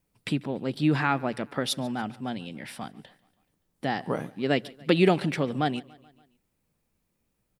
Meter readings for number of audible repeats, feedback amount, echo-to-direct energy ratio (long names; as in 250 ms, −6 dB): 3, 58%, −21.5 dB